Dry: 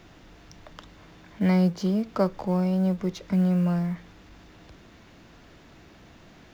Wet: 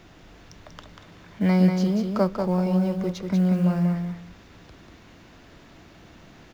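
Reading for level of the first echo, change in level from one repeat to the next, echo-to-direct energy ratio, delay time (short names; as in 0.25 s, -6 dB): -5.5 dB, -14.0 dB, -5.5 dB, 0.19 s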